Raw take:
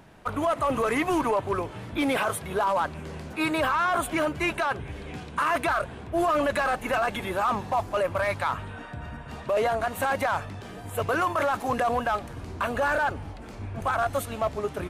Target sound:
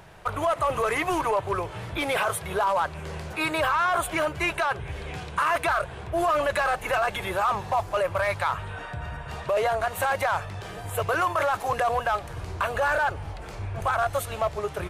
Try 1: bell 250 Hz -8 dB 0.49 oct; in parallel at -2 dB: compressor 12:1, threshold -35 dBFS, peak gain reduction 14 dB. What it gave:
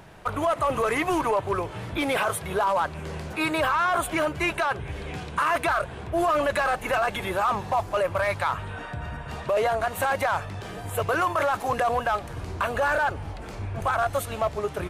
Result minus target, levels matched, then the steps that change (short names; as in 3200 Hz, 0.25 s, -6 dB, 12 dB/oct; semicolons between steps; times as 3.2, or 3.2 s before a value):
250 Hz band +3.5 dB
change: bell 250 Hz -18.5 dB 0.49 oct